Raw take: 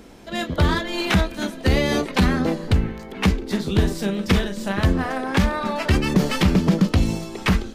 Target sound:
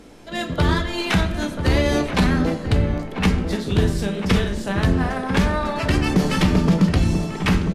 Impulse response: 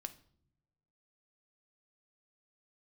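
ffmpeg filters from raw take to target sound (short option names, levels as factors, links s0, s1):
-filter_complex "[0:a]asplit=2[s0][s1];[s1]adelay=991.3,volume=0.398,highshelf=f=4000:g=-22.3[s2];[s0][s2]amix=inputs=2:normalize=0[s3];[1:a]atrim=start_sample=2205,afade=t=out:st=0.17:d=0.01,atrim=end_sample=7938,asetrate=23373,aresample=44100[s4];[s3][s4]afir=irnorm=-1:irlink=0"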